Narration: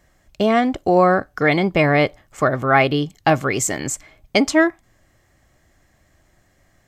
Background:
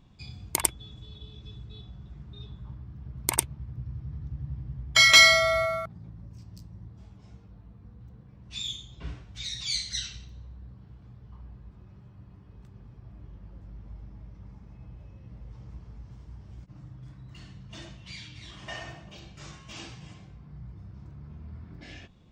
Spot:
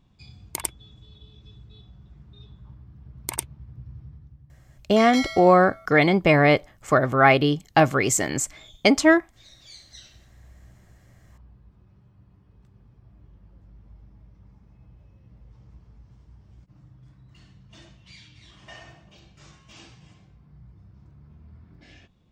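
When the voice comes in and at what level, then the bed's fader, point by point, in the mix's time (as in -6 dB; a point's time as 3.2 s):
4.50 s, -1.0 dB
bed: 4.03 s -4 dB
4.47 s -16.5 dB
9.8 s -16.5 dB
10.47 s -5.5 dB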